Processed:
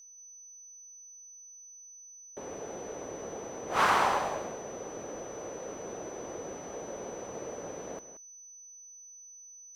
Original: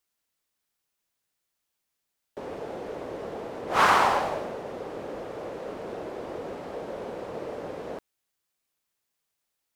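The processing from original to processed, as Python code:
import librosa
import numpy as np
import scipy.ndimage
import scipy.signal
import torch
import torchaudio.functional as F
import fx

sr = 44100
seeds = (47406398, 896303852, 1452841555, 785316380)

y = x + 10.0 ** (-45.0 / 20.0) * np.sin(2.0 * np.pi * 6000.0 * np.arange(len(x)) / sr)
y = y + 10.0 ** (-12.5 / 20.0) * np.pad(y, (int(180 * sr / 1000.0), 0))[:len(y)]
y = F.gain(torch.from_numpy(y), -5.0).numpy()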